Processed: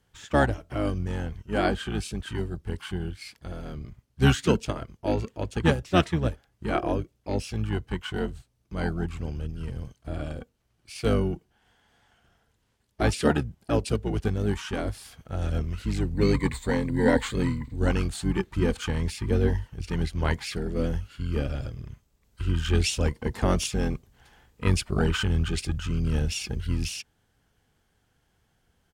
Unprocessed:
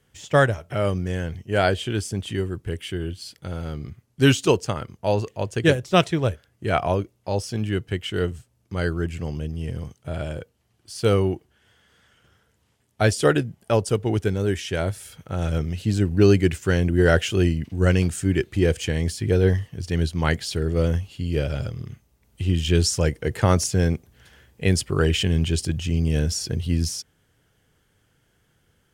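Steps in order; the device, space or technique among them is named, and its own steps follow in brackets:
octave pedal (pitch-shifted copies added −12 semitones −1 dB)
0:16.14–0:17.76: EQ curve with evenly spaced ripples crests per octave 1, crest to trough 12 dB
level −6.5 dB

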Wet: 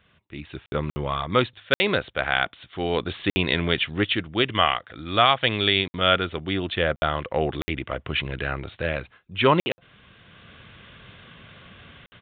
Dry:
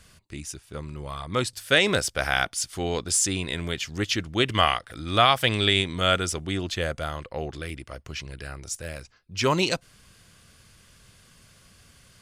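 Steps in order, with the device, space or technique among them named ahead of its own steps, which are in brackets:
call with lost packets (high-pass filter 130 Hz 6 dB per octave; downsampling to 8,000 Hz; automatic gain control gain up to 15.5 dB; dropped packets of 60 ms)
level −4 dB

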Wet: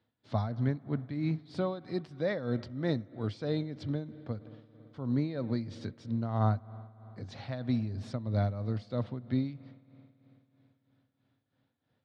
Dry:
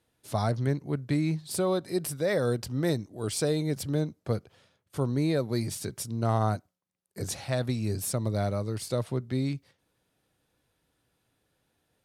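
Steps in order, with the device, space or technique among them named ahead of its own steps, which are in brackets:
combo amplifier with spring reverb and tremolo (spring reverb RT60 3.8 s, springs 55 ms, chirp 50 ms, DRR 17 dB; amplitude tremolo 3.1 Hz, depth 69%; loudspeaker in its box 88–4,100 Hz, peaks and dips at 100 Hz +8 dB, 240 Hz +7 dB, 390 Hz −5 dB, 2,600 Hz −5 dB)
level −2.5 dB

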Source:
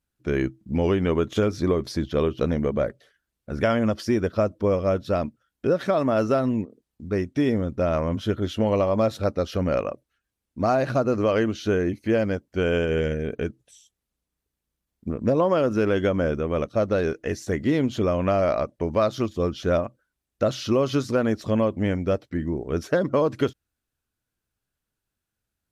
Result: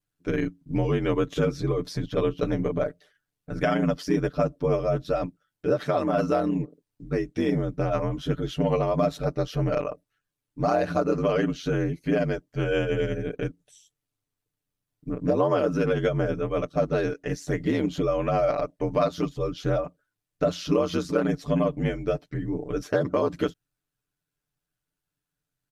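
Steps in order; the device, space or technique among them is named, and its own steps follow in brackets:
ring-modulated robot voice (ring modulation 45 Hz; comb filter 6.8 ms, depth 82%)
level −1.5 dB

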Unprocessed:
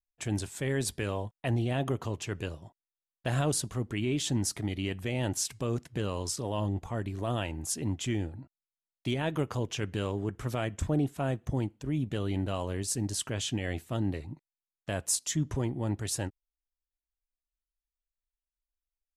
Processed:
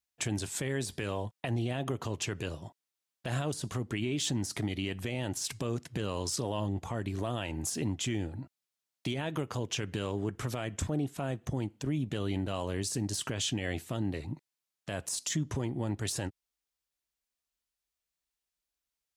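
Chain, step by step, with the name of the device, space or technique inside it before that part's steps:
broadcast voice chain (high-pass filter 83 Hz; de-essing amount 70%; downward compressor 3 to 1, threshold −35 dBFS, peak gain reduction 9 dB; parametric band 5,100 Hz +3.5 dB 2.1 octaves; brickwall limiter −27 dBFS, peak gain reduction 7 dB)
level +5 dB

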